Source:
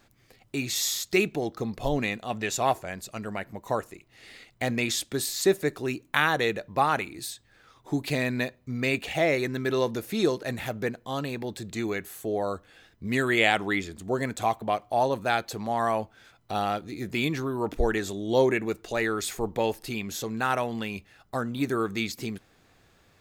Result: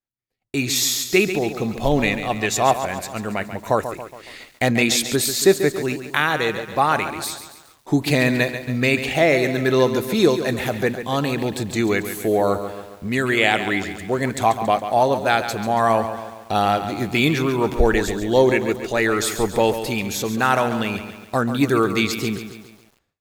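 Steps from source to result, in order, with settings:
automatic gain control gain up to 11.5 dB
downward expander −37 dBFS
feedback echo at a low word length 139 ms, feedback 55%, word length 7 bits, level −10 dB
level −1.5 dB

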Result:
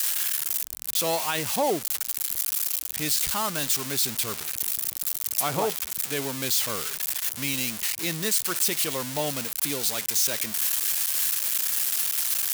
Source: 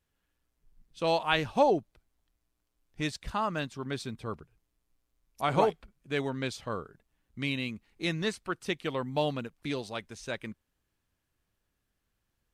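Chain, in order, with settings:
spike at every zero crossing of −17.5 dBFS
high-pass filter 88 Hz 6 dB per octave
brickwall limiter −19.5 dBFS, peak gain reduction 9 dB
level +4 dB

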